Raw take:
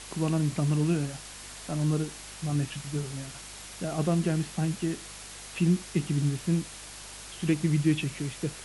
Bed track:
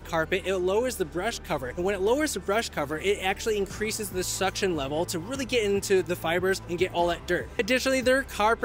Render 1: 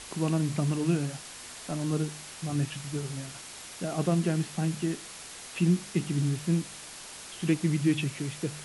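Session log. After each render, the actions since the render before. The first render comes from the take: de-hum 50 Hz, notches 4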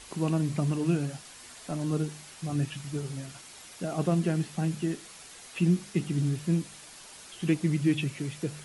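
denoiser 6 dB, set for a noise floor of -45 dBFS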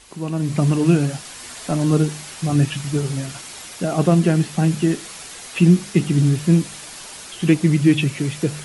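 AGC gain up to 12.5 dB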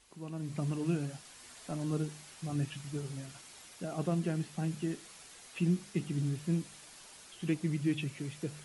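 gain -17 dB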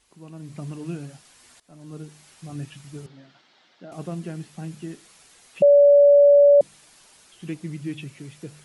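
1.6–2.27 fade in, from -19 dB; 3.06–3.92 speaker cabinet 230–4100 Hz, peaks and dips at 440 Hz -5 dB, 1100 Hz -4 dB, 2500 Hz -7 dB; 5.62–6.61 bleep 573 Hz -9.5 dBFS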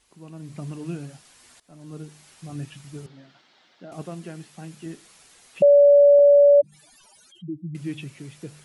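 4.02–4.86 low shelf 290 Hz -7.5 dB; 6.19–7.75 spectral contrast raised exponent 3.2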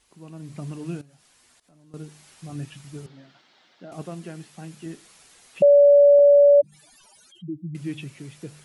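1.01–1.94 compressor 2.5:1, threshold -58 dBFS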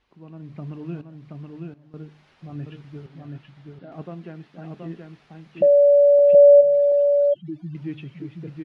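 air absorption 300 m; on a send: echo 0.726 s -3.5 dB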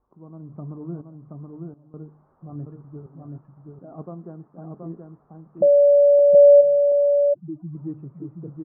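elliptic low-pass 1200 Hz, stop band 70 dB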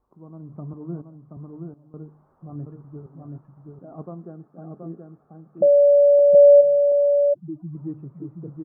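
0.73–1.37 three-band expander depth 40%; 4.25–5.66 notch comb 990 Hz

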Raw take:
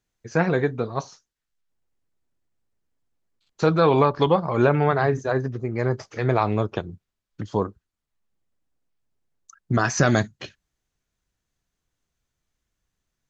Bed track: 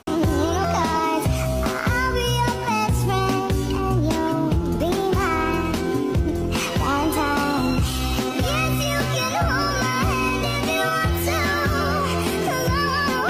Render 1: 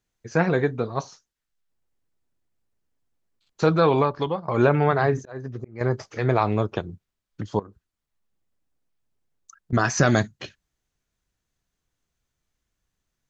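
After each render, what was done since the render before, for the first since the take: 3.77–4.48 fade out, to -12.5 dB; 5.18–5.81 auto swell 0.428 s; 7.59–9.73 compressor 10:1, threshold -36 dBFS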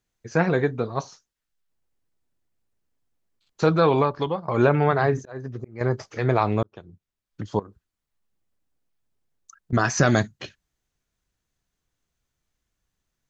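6.63–7.52 fade in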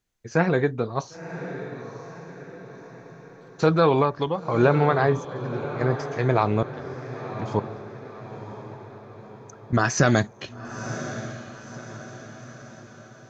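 diffused feedback echo 1.015 s, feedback 49%, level -11 dB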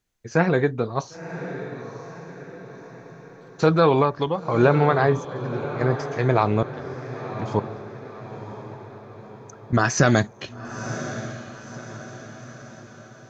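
gain +1.5 dB

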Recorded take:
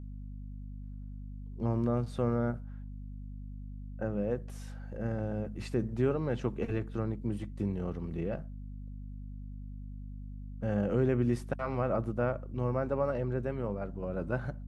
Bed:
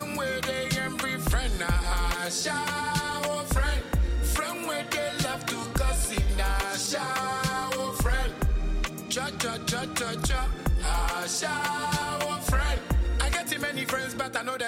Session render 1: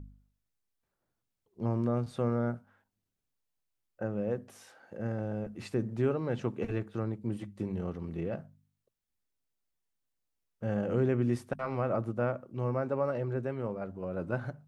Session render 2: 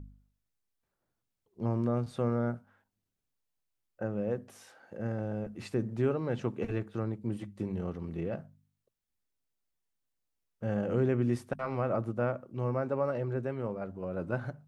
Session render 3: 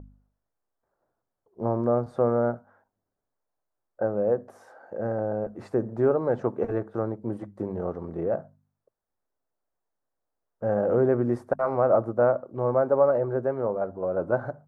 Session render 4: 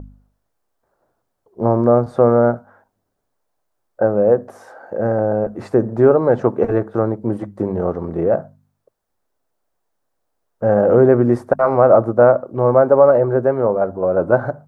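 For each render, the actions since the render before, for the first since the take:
de-hum 50 Hz, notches 5
nothing audible
EQ curve 190 Hz 0 dB, 640 Hz +13 dB, 1600 Hz +4 dB, 2700 Hz -13 dB, 4900 Hz -8 dB
gain +10.5 dB; limiter -1 dBFS, peak gain reduction 1.5 dB

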